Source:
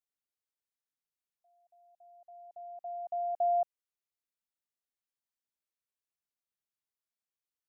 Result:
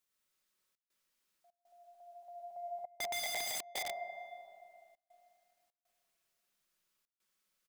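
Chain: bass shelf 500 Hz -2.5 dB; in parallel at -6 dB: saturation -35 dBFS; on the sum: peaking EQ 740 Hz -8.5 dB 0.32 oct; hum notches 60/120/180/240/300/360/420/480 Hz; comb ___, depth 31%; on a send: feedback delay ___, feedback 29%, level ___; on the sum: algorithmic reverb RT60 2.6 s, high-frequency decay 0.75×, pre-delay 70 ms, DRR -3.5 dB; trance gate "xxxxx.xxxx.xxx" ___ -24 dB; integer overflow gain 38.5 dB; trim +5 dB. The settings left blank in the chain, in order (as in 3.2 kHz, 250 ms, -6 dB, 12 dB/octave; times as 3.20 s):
5.4 ms, 236 ms, -16 dB, 100 bpm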